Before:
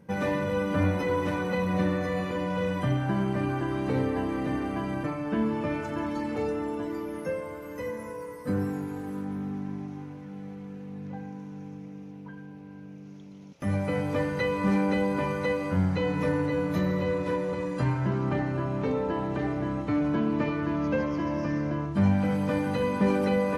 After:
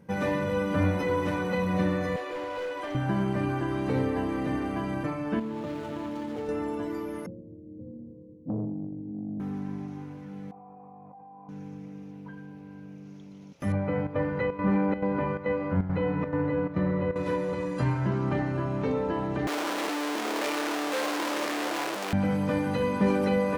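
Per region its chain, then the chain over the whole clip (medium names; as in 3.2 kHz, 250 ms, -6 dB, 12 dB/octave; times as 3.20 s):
2.16–2.95 s: elliptic high-pass 310 Hz + treble shelf 7.8 kHz -6.5 dB + overload inside the chain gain 30 dB
5.39–6.49 s: median filter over 25 samples + high-pass 120 Hz 6 dB/octave + compression 5:1, threshold -30 dBFS
7.26–9.40 s: inverse Chebyshev low-pass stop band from 1.4 kHz, stop band 70 dB + frequency shift +14 Hz + transformer saturation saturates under 310 Hz
10.51–11.49 s: cascade formant filter a + level flattener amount 100%
13.72–17.16 s: low-pass 1.9 kHz + square tremolo 2.3 Hz, depth 65%, duty 80%
19.47–22.13 s: one-bit comparator + high-pass 320 Hz 24 dB/octave + treble shelf 9 kHz -8 dB
whole clip: none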